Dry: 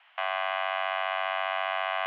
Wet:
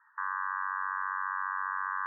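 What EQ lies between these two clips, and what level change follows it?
linear-phase brick-wall band-pass 850–1,900 Hz
0.0 dB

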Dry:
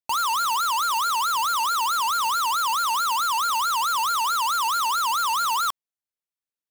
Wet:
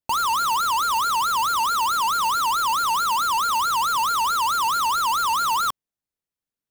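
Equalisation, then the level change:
low-shelf EQ 490 Hz +11 dB
0.0 dB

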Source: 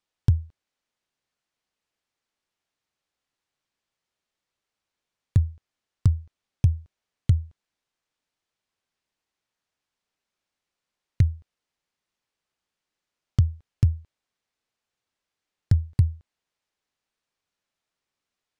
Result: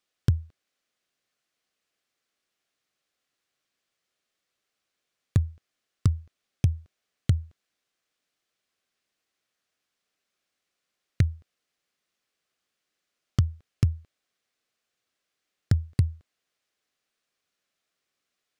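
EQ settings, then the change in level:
parametric band 910 Hz −10.5 dB 0.26 octaves
dynamic equaliser 1,200 Hz, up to +5 dB, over −49 dBFS, Q 1.1
low-shelf EQ 130 Hz −11 dB
+4.0 dB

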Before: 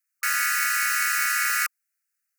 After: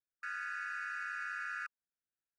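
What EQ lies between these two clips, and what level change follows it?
moving average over 42 samples
high-frequency loss of the air 84 metres
+1.0 dB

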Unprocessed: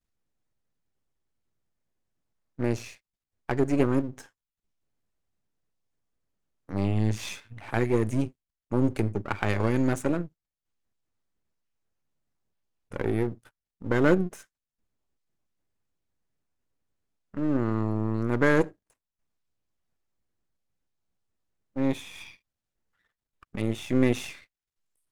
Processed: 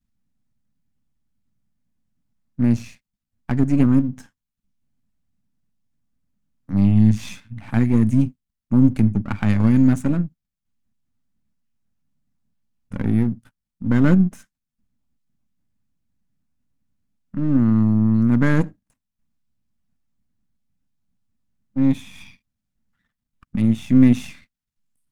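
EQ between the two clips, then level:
low shelf with overshoot 300 Hz +8.5 dB, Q 3
0.0 dB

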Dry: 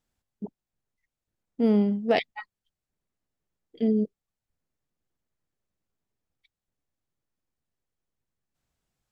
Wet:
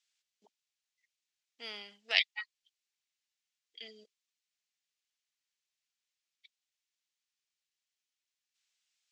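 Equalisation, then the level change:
flat-topped band-pass 4,200 Hz, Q 0.84
+7.0 dB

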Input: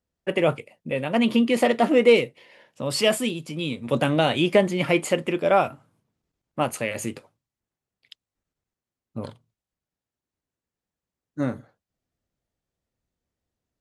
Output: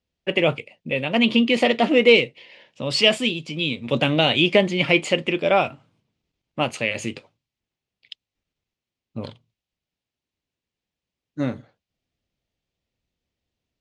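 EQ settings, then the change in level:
high-frequency loss of the air 130 metres
high shelf with overshoot 2,000 Hz +7.5 dB, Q 1.5
+1.5 dB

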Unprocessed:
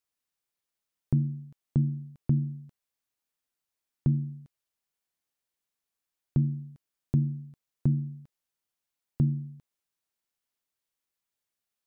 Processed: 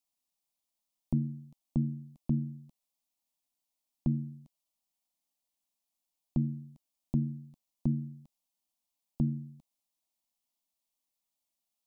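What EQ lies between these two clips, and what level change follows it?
phaser with its sweep stopped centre 420 Hz, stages 6
+1.5 dB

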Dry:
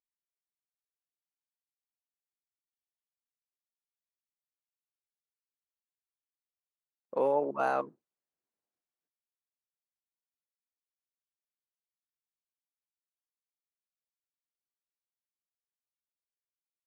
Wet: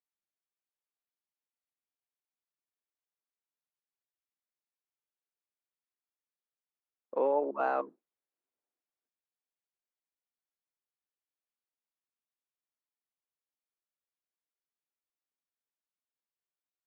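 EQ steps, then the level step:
high-pass filter 230 Hz 24 dB per octave
high-frequency loss of the air 160 metres
high-shelf EQ 5,300 Hz −9 dB
0.0 dB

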